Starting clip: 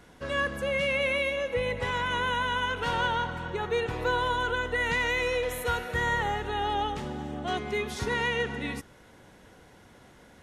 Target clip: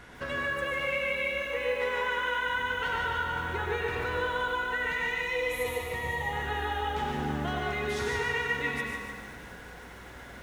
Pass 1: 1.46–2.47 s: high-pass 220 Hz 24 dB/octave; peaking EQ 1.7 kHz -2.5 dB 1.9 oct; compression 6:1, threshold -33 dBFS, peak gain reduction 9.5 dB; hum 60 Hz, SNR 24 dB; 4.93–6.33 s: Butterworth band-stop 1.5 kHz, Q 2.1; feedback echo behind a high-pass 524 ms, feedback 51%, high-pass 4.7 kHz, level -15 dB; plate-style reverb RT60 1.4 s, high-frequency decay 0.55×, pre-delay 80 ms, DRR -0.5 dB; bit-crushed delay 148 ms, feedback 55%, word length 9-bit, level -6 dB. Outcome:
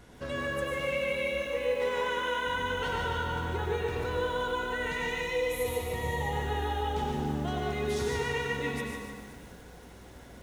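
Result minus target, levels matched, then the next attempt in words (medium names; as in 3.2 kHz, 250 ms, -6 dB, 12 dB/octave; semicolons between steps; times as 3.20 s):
2 kHz band -3.5 dB
1.46–2.47 s: high-pass 220 Hz 24 dB/octave; peaking EQ 1.7 kHz +8.5 dB 1.9 oct; compression 6:1, threshold -33 dBFS, peak gain reduction 15.5 dB; hum 60 Hz, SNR 24 dB; 4.93–6.33 s: Butterworth band-stop 1.5 kHz, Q 2.1; feedback echo behind a high-pass 524 ms, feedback 51%, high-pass 4.7 kHz, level -15 dB; plate-style reverb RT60 1.4 s, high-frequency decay 0.55×, pre-delay 80 ms, DRR -0.5 dB; bit-crushed delay 148 ms, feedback 55%, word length 9-bit, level -6 dB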